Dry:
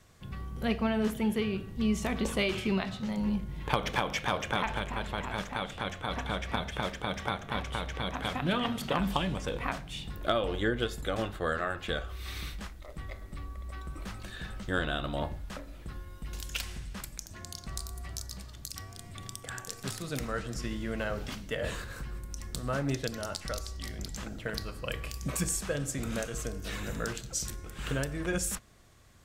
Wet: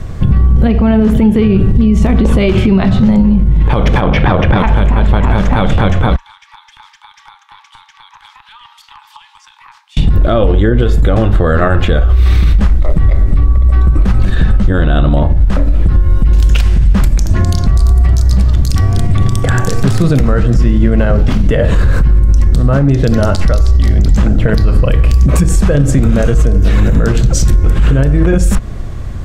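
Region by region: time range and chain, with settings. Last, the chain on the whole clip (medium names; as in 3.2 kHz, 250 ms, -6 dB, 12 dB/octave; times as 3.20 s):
4.01–4.59 s: boxcar filter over 6 samples + transformer saturation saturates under 960 Hz
6.16–9.97 s: Chebyshev high-pass 830 Hz, order 10 + compression 3:1, threshold -38 dBFS + FFT filter 110 Hz 0 dB, 1.5 kHz -26 dB, 4.8 kHz -15 dB, 9.3 kHz -19 dB
whole clip: tilt EQ -3.5 dB/octave; compression, threshold -27 dBFS; loudness maximiser +27.5 dB; trim -1 dB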